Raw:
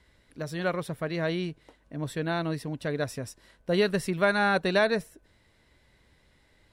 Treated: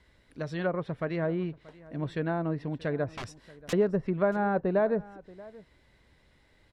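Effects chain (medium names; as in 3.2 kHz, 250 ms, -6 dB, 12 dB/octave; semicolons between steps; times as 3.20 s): treble shelf 6.6 kHz -6.5 dB; 3.13–3.73 s: integer overflow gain 31.5 dB; low-pass that closes with the level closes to 870 Hz, closed at -23.5 dBFS; on a send: delay 631 ms -21 dB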